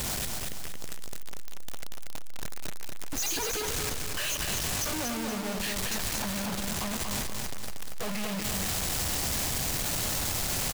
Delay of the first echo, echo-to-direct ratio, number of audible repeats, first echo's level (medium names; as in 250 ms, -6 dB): 236 ms, -3.0 dB, 4, -4.0 dB